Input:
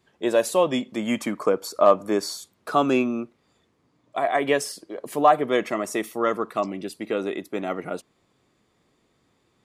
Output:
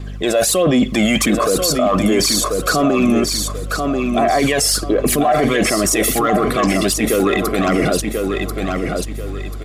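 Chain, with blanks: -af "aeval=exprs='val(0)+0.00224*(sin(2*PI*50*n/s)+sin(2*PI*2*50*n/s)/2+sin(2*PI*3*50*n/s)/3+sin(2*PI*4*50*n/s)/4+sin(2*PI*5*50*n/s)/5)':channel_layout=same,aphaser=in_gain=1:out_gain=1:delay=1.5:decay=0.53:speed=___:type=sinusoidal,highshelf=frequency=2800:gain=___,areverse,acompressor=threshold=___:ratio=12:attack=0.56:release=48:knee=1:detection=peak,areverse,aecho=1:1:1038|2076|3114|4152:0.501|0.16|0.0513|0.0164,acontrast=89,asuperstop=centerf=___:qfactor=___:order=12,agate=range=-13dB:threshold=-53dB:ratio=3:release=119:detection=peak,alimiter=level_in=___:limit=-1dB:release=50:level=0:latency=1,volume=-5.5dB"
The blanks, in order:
1.4, 3, -29dB, 910, 5.7, 18dB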